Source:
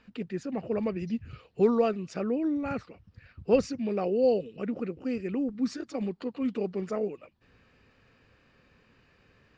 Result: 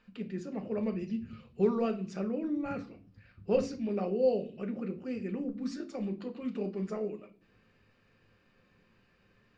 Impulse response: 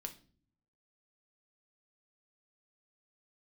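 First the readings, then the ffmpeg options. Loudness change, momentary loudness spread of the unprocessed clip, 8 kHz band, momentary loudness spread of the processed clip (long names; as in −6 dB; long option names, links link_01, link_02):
−4.0 dB, 10 LU, can't be measured, 10 LU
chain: -filter_complex "[1:a]atrim=start_sample=2205,asetrate=48510,aresample=44100[link_01];[0:a][link_01]afir=irnorm=-1:irlink=0,volume=-1dB"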